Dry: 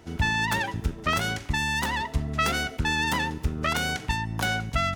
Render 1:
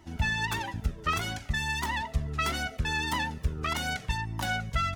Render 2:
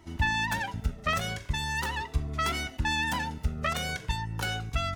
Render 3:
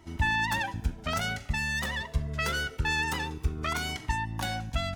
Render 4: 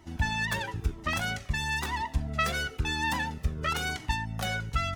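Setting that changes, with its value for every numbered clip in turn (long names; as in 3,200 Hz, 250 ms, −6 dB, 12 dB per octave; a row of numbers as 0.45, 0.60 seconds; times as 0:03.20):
flanger whose copies keep moving one way, speed: 1.6, 0.39, 0.25, 1 Hertz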